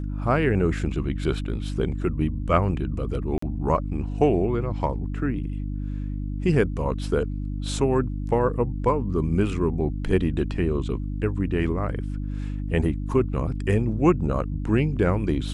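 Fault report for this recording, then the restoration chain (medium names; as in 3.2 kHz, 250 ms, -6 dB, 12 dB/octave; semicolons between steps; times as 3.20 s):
hum 50 Hz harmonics 6 -29 dBFS
3.38–3.42 s: dropout 44 ms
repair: de-hum 50 Hz, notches 6; interpolate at 3.38 s, 44 ms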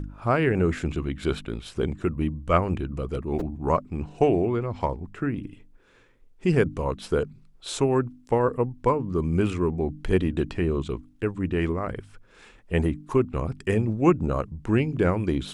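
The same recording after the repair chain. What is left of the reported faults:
nothing left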